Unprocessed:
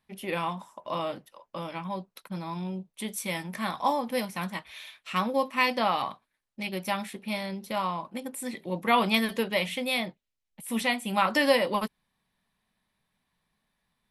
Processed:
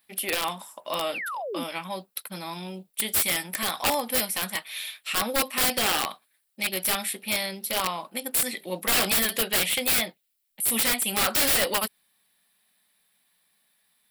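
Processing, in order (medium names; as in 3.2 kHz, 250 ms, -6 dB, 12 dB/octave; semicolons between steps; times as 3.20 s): RIAA curve recording; integer overflow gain 20 dB; graphic EQ with 31 bands 125 Hz -6 dB, 1 kHz -6 dB, 6.3 kHz -8 dB; painted sound fall, 1.14–1.64 s, 230–2900 Hz -37 dBFS; trim +4.5 dB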